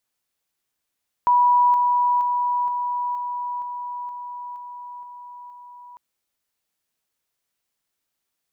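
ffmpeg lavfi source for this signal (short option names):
-f lavfi -i "aevalsrc='pow(10,(-13-3*floor(t/0.47))/20)*sin(2*PI*977*t)':d=4.7:s=44100"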